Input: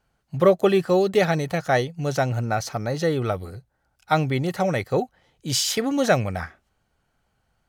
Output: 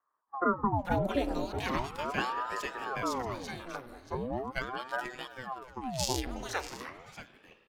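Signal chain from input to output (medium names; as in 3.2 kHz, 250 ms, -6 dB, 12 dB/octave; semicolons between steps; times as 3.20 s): bands offset in time lows, highs 450 ms, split 710 Hz; 4.15–6.27 s: robot voice 128 Hz; on a send: delay 632 ms -13 dB; on the sum: spring tank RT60 2.6 s, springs 53 ms, chirp 65 ms, DRR 13.5 dB; ring modulator with a swept carrier 630 Hz, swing 80%, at 0.39 Hz; trim -7 dB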